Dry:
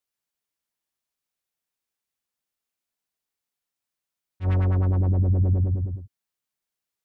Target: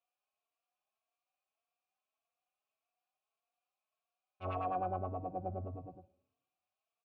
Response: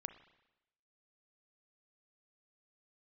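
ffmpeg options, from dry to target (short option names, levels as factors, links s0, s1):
-filter_complex "[0:a]acompressor=threshold=0.0891:ratio=6,asplit=3[s0][s1][s2];[s0]bandpass=f=730:t=q:w=8,volume=1[s3];[s1]bandpass=f=1090:t=q:w=8,volume=0.501[s4];[s2]bandpass=f=2440:t=q:w=8,volume=0.355[s5];[s3][s4][s5]amix=inputs=3:normalize=0,asplit=2[s6][s7];[1:a]atrim=start_sample=2205[s8];[s7][s8]afir=irnorm=-1:irlink=0,volume=1.41[s9];[s6][s9]amix=inputs=2:normalize=0,asplit=2[s10][s11];[s11]adelay=3.8,afreqshift=1.7[s12];[s10][s12]amix=inputs=2:normalize=1,volume=2.82"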